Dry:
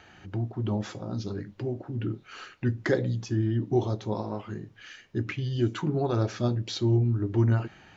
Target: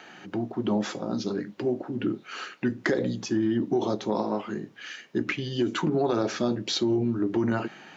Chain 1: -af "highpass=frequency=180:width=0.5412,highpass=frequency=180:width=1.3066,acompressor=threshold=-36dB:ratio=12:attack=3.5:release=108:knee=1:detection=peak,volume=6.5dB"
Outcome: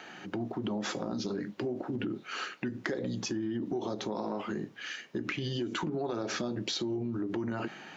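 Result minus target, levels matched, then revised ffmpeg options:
downward compressor: peak gain reduction +9 dB
-af "highpass=frequency=180:width=0.5412,highpass=frequency=180:width=1.3066,acompressor=threshold=-26dB:ratio=12:attack=3.5:release=108:knee=1:detection=peak,volume=6.5dB"

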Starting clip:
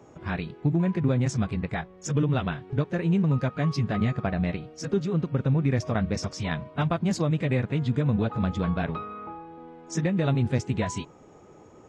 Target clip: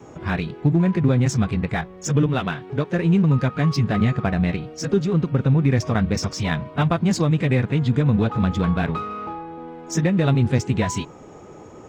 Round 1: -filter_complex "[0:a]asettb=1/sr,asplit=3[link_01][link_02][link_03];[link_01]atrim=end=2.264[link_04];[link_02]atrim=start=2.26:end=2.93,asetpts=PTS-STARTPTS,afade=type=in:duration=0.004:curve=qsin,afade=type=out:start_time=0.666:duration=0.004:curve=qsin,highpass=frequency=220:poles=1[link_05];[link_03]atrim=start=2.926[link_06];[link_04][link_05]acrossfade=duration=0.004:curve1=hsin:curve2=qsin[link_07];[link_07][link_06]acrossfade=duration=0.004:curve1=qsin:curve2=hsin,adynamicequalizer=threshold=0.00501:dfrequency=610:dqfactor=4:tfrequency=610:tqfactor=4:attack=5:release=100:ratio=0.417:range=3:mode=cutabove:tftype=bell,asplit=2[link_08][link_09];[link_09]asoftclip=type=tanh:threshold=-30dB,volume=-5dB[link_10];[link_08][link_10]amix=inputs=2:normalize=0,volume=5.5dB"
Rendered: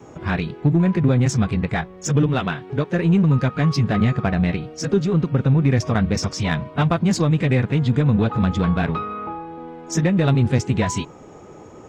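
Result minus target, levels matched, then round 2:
soft clipping: distortion −5 dB
-filter_complex "[0:a]asettb=1/sr,asplit=3[link_01][link_02][link_03];[link_01]atrim=end=2.264[link_04];[link_02]atrim=start=2.26:end=2.93,asetpts=PTS-STARTPTS,afade=type=in:duration=0.004:curve=qsin,afade=type=out:start_time=0.666:duration=0.004:curve=qsin,highpass=frequency=220:poles=1[link_05];[link_03]atrim=start=2.926[link_06];[link_04][link_05]acrossfade=duration=0.004:curve1=hsin:curve2=qsin[link_07];[link_07][link_06]acrossfade=duration=0.004:curve1=qsin:curve2=hsin,adynamicequalizer=threshold=0.00501:dfrequency=610:dqfactor=4:tfrequency=610:tqfactor=4:attack=5:release=100:ratio=0.417:range=3:mode=cutabove:tftype=bell,asplit=2[link_08][link_09];[link_09]asoftclip=type=tanh:threshold=-41dB,volume=-5dB[link_10];[link_08][link_10]amix=inputs=2:normalize=0,volume=5.5dB"

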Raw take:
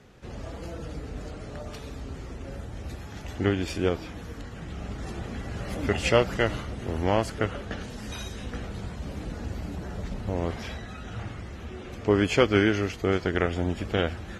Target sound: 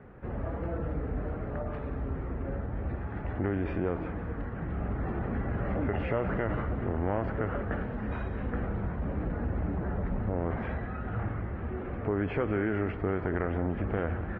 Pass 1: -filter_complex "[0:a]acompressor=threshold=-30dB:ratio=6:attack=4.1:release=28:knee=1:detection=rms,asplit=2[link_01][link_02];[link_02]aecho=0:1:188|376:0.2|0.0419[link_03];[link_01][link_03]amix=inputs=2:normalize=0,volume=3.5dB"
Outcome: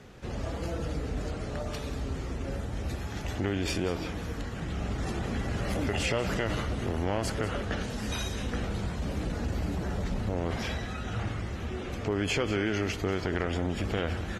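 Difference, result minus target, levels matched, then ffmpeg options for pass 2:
2,000 Hz band +3.0 dB
-filter_complex "[0:a]acompressor=threshold=-30dB:ratio=6:attack=4.1:release=28:knee=1:detection=rms,lowpass=frequency=1800:width=0.5412,lowpass=frequency=1800:width=1.3066,asplit=2[link_01][link_02];[link_02]aecho=0:1:188|376:0.2|0.0419[link_03];[link_01][link_03]amix=inputs=2:normalize=0,volume=3.5dB"

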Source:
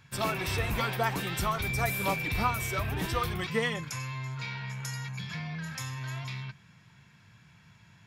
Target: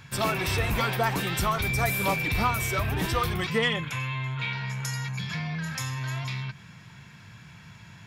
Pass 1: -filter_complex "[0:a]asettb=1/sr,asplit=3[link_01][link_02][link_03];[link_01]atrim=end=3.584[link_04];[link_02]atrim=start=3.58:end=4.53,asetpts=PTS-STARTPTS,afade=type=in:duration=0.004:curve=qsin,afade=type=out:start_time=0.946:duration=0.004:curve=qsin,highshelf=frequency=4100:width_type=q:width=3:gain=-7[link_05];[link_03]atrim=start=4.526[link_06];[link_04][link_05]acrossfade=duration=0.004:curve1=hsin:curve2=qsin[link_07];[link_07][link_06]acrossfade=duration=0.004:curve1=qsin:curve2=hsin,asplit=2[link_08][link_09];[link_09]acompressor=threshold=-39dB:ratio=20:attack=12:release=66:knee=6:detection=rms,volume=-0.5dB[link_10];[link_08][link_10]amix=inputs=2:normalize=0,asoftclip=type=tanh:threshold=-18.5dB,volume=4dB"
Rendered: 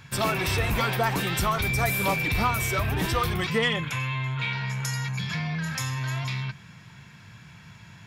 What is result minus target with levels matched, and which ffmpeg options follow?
downward compressor: peak gain reduction −10.5 dB
-filter_complex "[0:a]asettb=1/sr,asplit=3[link_01][link_02][link_03];[link_01]atrim=end=3.584[link_04];[link_02]atrim=start=3.58:end=4.53,asetpts=PTS-STARTPTS,afade=type=in:duration=0.004:curve=qsin,afade=type=out:start_time=0.946:duration=0.004:curve=qsin,highshelf=frequency=4100:width_type=q:width=3:gain=-7[link_05];[link_03]atrim=start=4.526[link_06];[link_04][link_05]acrossfade=duration=0.004:curve1=hsin:curve2=qsin[link_07];[link_07][link_06]acrossfade=duration=0.004:curve1=qsin:curve2=hsin,asplit=2[link_08][link_09];[link_09]acompressor=threshold=-50dB:ratio=20:attack=12:release=66:knee=6:detection=rms,volume=-0.5dB[link_10];[link_08][link_10]amix=inputs=2:normalize=0,asoftclip=type=tanh:threshold=-18.5dB,volume=4dB"

